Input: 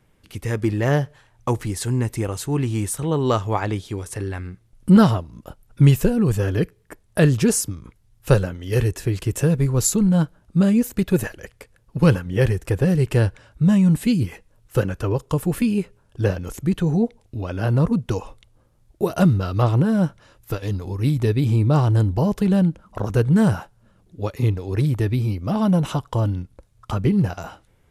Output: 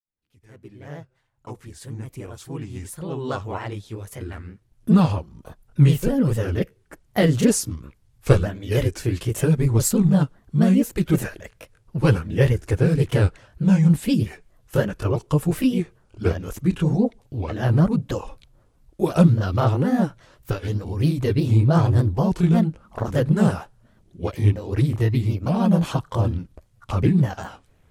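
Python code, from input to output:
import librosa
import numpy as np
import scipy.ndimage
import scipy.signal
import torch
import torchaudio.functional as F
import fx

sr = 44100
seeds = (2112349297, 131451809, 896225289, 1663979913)

y = fx.fade_in_head(x, sr, length_s=7.89)
y = fx.granulator(y, sr, seeds[0], grain_ms=176.0, per_s=20.0, spray_ms=18.0, spread_st=3)
y = F.gain(torch.from_numpy(y), 3.5).numpy()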